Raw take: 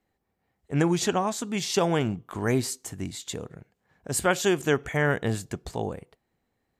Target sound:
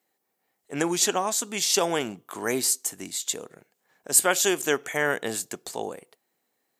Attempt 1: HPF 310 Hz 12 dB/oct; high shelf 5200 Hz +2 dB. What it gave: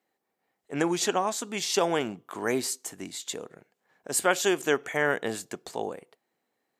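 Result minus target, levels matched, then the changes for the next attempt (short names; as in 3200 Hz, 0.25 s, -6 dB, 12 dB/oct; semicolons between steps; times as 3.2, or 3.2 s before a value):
8000 Hz band -4.5 dB
change: high shelf 5200 Hz +14 dB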